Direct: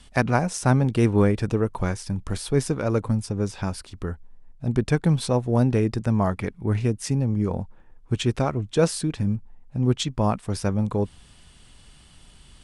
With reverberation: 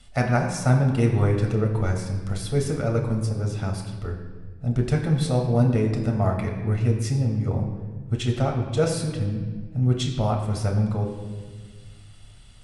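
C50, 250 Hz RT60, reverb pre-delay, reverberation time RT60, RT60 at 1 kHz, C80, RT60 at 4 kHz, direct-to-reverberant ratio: 6.0 dB, 2.0 s, 8 ms, 1.5 s, 1.3 s, 7.5 dB, 1.1 s, 1.5 dB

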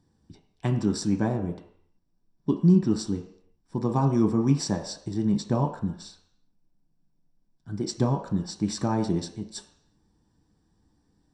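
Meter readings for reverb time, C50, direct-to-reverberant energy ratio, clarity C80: not exponential, 9.0 dB, 2.5 dB, 11.5 dB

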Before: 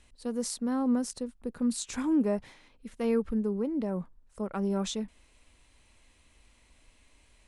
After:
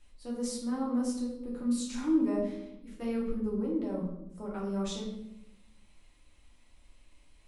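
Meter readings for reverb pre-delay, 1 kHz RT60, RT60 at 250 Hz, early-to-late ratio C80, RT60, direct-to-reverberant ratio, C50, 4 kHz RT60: 3 ms, 0.70 s, 1.2 s, 7.0 dB, 0.80 s, -5.0 dB, 3.5 dB, 0.60 s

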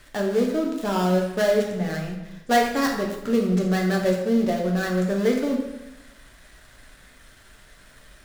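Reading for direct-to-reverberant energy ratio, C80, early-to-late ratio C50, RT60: -0.5 dB, 7.0 dB, 4.5 dB, 0.95 s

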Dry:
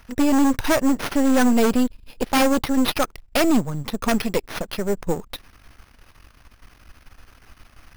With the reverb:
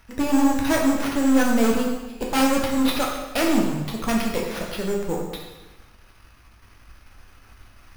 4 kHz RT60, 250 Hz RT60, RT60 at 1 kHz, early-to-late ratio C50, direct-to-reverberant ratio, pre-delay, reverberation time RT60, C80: 1.0 s, 1.1 s, 1.1 s, 2.5 dB, -2.0 dB, 4 ms, 1.1 s, 5.0 dB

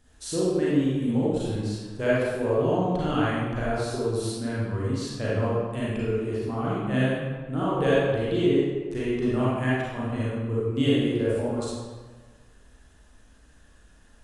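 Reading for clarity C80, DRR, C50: -0.5 dB, -8.5 dB, -4.5 dB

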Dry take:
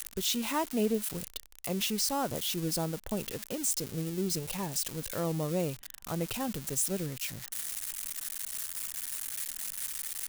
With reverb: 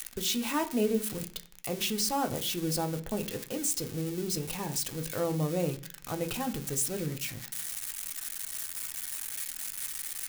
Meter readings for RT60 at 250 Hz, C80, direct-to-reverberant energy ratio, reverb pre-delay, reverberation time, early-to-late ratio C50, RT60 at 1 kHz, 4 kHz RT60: 0.75 s, 21.5 dB, 4.0 dB, 3 ms, 0.50 s, 16.5 dB, 0.40 s, 0.55 s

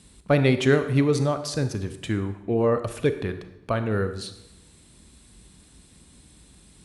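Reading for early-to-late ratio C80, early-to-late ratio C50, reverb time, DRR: 13.5 dB, 11.0 dB, 0.90 s, 9.5 dB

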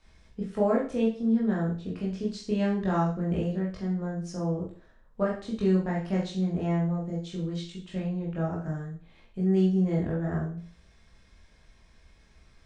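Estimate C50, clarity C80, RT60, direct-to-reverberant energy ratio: 5.5 dB, 10.5 dB, 0.45 s, -4.5 dB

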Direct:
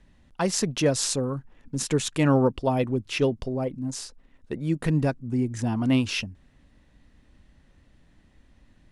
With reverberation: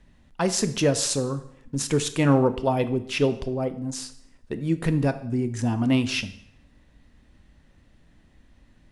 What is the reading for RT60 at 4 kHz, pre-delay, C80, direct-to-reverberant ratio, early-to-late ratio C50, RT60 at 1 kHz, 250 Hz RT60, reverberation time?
0.65 s, 7 ms, 17.0 dB, 10.5 dB, 14.0 dB, 0.70 s, 0.70 s, 0.70 s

